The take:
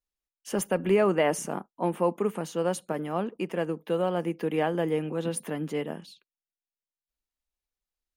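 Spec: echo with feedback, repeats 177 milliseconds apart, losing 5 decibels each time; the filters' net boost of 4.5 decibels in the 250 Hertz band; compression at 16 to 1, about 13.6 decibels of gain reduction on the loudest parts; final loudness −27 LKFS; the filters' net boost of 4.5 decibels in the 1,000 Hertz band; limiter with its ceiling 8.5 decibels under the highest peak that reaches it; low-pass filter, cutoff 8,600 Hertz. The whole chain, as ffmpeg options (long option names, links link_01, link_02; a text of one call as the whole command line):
ffmpeg -i in.wav -af "lowpass=8600,equalizer=frequency=250:width_type=o:gain=6.5,equalizer=frequency=1000:width_type=o:gain=5.5,acompressor=threshold=-28dB:ratio=16,alimiter=level_in=1.5dB:limit=-24dB:level=0:latency=1,volume=-1.5dB,aecho=1:1:177|354|531|708|885|1062|1239:0.562|0.315|0.176|0.0988|0.0553|0.031|0.0173,volume=7.5dB" out.wav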